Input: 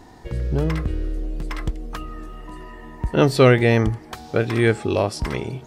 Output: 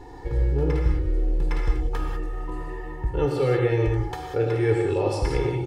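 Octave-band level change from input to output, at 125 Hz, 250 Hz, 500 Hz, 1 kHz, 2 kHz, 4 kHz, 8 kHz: −2.5 dB, −6.0 dB, −3.5 dB, −4.5 dB, −9.0 dB, −9.5 dB, can't be measured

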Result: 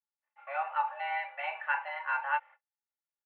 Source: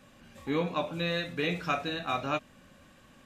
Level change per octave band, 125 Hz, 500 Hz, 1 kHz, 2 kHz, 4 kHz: below −40 dB, −12.0 dB, +3.0 dB, +2.5 dB, −14.0 dB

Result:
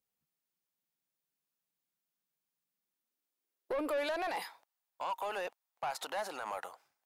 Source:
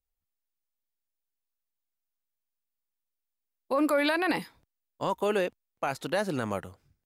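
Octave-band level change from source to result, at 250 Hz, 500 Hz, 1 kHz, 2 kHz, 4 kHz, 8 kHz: −15.0, −8.5, −5.0, −9.0, −7.5, −4.5 decibels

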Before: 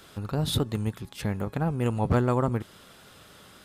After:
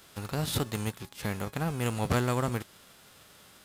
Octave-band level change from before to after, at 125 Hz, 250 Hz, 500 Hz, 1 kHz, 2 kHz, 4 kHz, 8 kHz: −4.5, −4.5, −4.5, −2.5, +2.5, −2.5, +3.0 decibels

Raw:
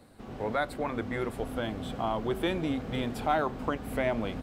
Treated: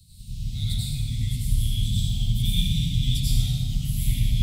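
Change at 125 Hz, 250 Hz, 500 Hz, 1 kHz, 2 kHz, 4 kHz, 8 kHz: +16.0 dB, −0.5 dB, below −30 dB, below −30 dB, −10.0 dB, +12.5 dB, +17.5 dB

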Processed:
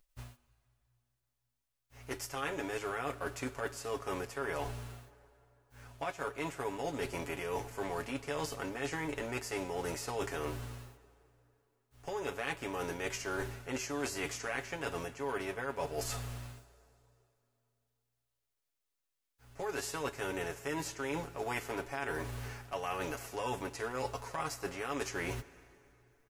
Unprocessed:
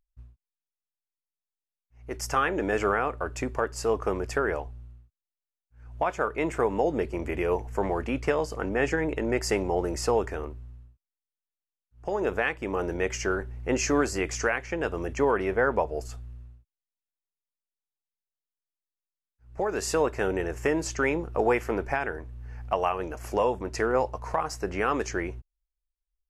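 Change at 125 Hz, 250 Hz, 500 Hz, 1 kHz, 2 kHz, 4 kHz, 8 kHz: −7.5, −11.0, −11.5, −9.5, −8.5, −4.0, −6.5 decibels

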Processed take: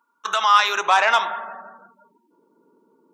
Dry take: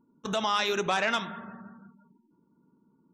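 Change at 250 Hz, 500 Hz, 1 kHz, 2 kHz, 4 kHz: below −10 dB, +3.0 dB, +13.0 dB, +10.0 dB, +7.5 dB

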